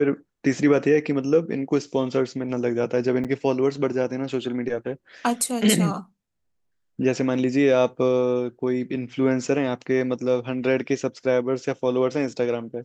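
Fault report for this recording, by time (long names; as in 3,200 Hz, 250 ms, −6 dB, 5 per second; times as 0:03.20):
0:03.24–0:03.25: drop-out 7.1 ms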